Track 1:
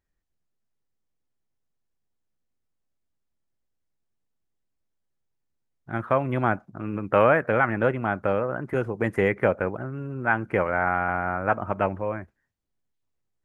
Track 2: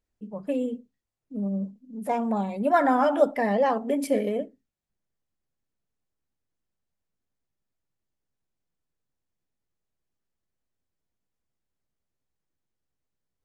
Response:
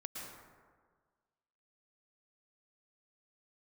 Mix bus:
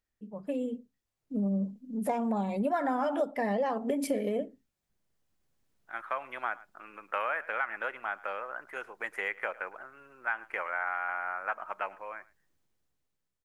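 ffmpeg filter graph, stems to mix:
-filter_complex "[0:a]highpass=1.1k,volume=-3dB,asplit=2[a][b];[b]volume=-22dB[c];[1:a]dynaudnorm=f=350:g=7:m=16.5dB,volume=-6dB[d];[c]aecho=0:1:108:1[e];[a][d][e]amix=inputs=3:normalize=0,acompressor=threshold=-27dB:ratio=6"

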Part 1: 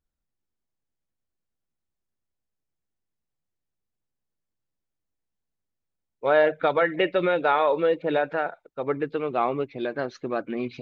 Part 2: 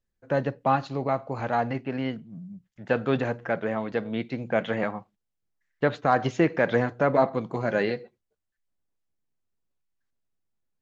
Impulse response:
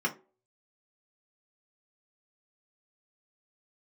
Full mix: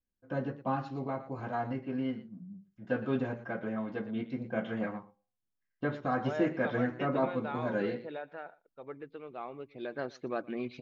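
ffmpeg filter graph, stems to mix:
-filter_complex "[0:a]volume=-7dB,afade=t=in:st=9.58:d=0.5:silence=0.298538,asplit=2[a][b];[b]volume=-24dB[c];[1:a]equalizer=f=720:t=o:w=0.3:g=-3.5,volume=-12.5dB,asplit=3[d][e][f];[e]volume=-5dB[g];[f]volume=-13dB[h];[2:a]atrim=start_sample=2205[i];[g][i]afir=irnorm=-1:irlink=0[j];[c][h]amix=inputs=2:normalize=0,aecho=0:1:118:1[k];[a][d][j][k]amix=inputs=4:normalize=0"

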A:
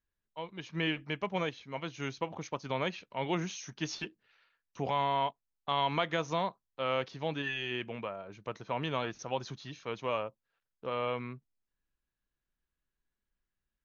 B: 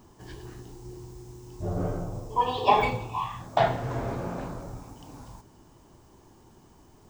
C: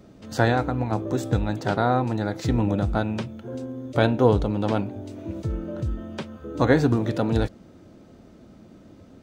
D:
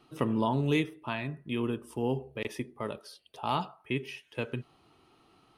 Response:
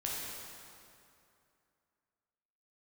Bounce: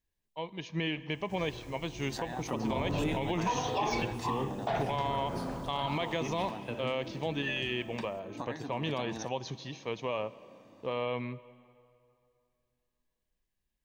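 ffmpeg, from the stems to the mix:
-filter_complex "[0:a]equalizer=f=1.4k:t=o:w=0.31:g=-14.5,volume=2.5dB,asplit=2[a][b];[b]volume=-20dB[c];[1:a]adelay=1100,volume=-4dB[d];[2:a]highpass=270,aecho=1:1:1.1:0.65,acompressor=threshold=-29dB:ratio=6,adelay=1800,volume=-8dB[e];[3:a]acrossover=split=420[f][g];[f]aeval=exprs='val(0)*(1-0.7/2+0.7/2*cos(2*PI*7.9*n/s))':c=same[h];[g]aeval=exprs='val(0)*(1-0.7/2-0.7/2*cos(2*PI*7.9*n/s))':c=same[i];[h][i]amix=inputs=2:normalize=0,adelay=2300,volume=-5dB,asplit=2[j][k];[k]volume=-4dB[l];[4:a]atrim=start_sample=2205[m];[c][l]amix=inputs=2:normalize=0[n];[n][m]afir=irnorm=-1:irlink=0[o];[a][d][e][j][o]amix=inputs=5:normalize=0,alimiter=limit=-21.5dB:level=0:latency=1:release=84"

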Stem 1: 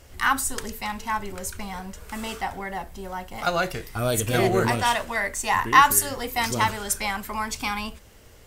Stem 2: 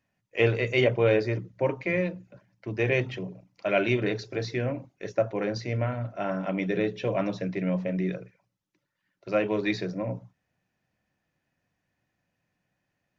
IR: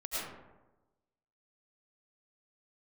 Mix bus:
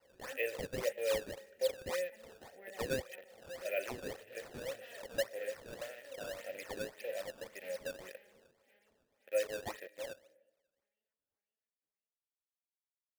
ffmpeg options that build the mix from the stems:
-filter_complex "[0:a]bandreject=f=2.5k:w=12,alimiter=limit=-13dB:level=0:latency=1:release=258,aeval=exprs='0.0531*(abs(mod(val(0)/0.0531+3,4)-2)-1)':c=same,volume=-2.5dB,asplit=3[a][b][c];[b]volume=-22.5dB[d];[c]volume=-18.5dB[e];[1:a]highpass=f=810:p=1,acrusher=bits=5:mix=0:aa=0.000001,volume=0dB,asplit=3[f][g][h];[g]volume=-22.5dB[i];[h]apad=whole_len=373203[j];[a][j]sidechaincompress=threshold=-35dB:ratio=5:attack=5.9:release=1340[k];[2:a]atrim=start_sample=2205[l];[d][i]amix=inputs=2:normalize=0[m];[m][l]afir=irnorm=-1:irlink=0[n];[e]aecho=0:1:524|1048|1572|2096|2620|3144|3668|4192:1|0.55|0.303|0.166|0.0915|0.0503|0.0277|0.0152[o];[k][f][n][o]amix=inputs=4:normalize=0,adynamicequalizer=threshold=0.00631:dfrequency=360:dqfactor=1:tfrequency=360:tqfactor=1:attack=5:release=100:ratio=0.375:range=2:mode=cutabove:tftype=bell,asplit=3[p][q][r];[p]bandpass=f=530:t=q:w=8,volume=0dB[s];[q]bandpass=f=1.84k:t=q:w=8,volume=-6dB[t];[r]bandpass=f=2.48k:t=q:w=8,volume=-9dB[u];[s][t][u]amix=inputs=3:normalize=0,acrusher=samples=12:mix=1:aa=0.000001:lfo=1:lforange=19.2:lforate=1.8"

